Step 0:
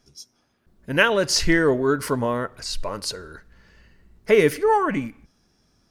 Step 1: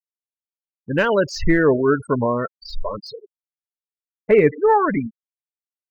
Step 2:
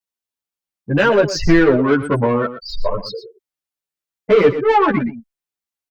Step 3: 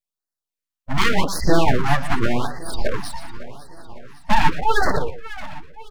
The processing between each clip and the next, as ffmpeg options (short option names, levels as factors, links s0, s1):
-af "afftfilt=real='re*gte(hypot(re,im),0.0891)':imag='im*gte(hypot(re,im),0.0891)':win_size=1024:overlap=0.75,deesser=1,agate=range=0.501:threshold=0.00562:ratio=16:detection=peak,volume=1.5"
-filter_complex "[0:a]asoftclip=type=tanh:threshold=0.188,aecho=1:1:118:0.224,asplit=2[s0][s1];[s1]adelay=10.1,afreqshift=0.8[s2];[s0][s2]amix=inputs=2:normalize=1,volume=2.82"
-af "aeval=exprs='abs(val(0))':c=same,aecho=1:1:555|1110|1665|2220|2775:0.158|0.0903|0.0515|0.0294|0.0167,afftfilt=real='re*(1-between(b*sr/1024,390*pow(2900/390,0.5+0.5*sin(2*PI*0.87*pts/sr))/1.41,390*pow(2900/390,0.5+0.5*sin(2*PI*0.87*pts/sr))*1.41))':imag='im*(1-between(b*sr/1024,390*pow(2900/390,0.5+0.5*sin(2*PI*0.87*pts/sr))/1.41,390*pow(2900/390,0.5+0.5*sin(2*PI*0.87*pts/sr))*1.41))':win_size=1024:overlap=0.75"